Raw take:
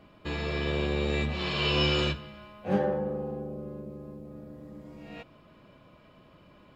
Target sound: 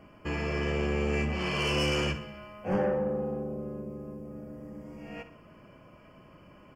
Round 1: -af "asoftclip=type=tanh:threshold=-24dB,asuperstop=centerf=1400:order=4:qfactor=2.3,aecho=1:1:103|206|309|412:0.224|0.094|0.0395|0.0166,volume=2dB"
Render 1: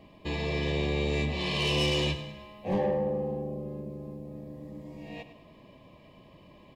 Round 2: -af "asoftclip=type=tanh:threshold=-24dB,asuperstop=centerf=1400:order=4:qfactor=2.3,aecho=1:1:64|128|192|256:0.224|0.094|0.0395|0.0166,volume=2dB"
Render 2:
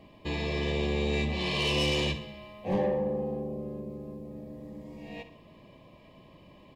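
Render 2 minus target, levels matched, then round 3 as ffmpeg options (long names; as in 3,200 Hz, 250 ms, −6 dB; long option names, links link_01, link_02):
4,000 Hz band +3.0 dB
-af "asoftclip=type=tanh:threshold=-24dB,asuperstop=centerf=3800:order=4:qfactor=2.3,aecho=1:1:64|128|192|256:0.224|0.094|0.0395|0.0166,volume=2dB"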